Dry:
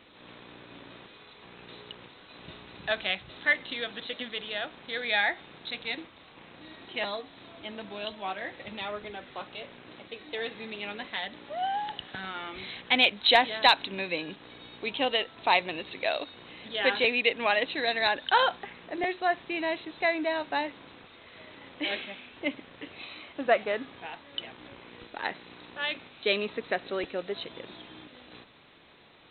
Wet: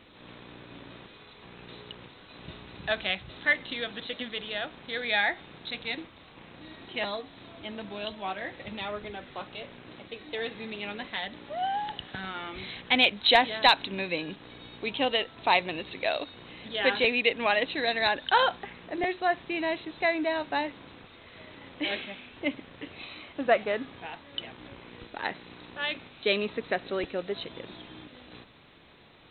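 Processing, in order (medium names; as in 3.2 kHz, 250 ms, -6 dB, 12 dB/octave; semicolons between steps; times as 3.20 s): bass shelf 180 Hz +7.5 dB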